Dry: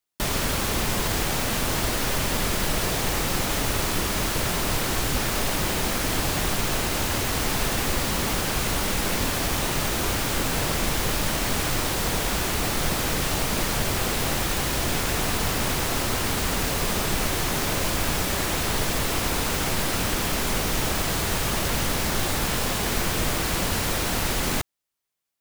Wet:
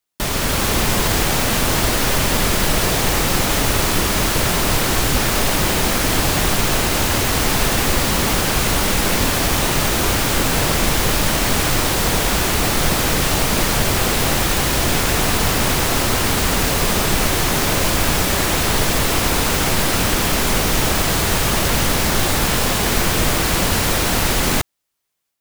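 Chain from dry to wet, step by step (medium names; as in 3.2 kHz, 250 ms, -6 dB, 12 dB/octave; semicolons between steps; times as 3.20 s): level rider gain up to 3.5 dB; trim +4 dB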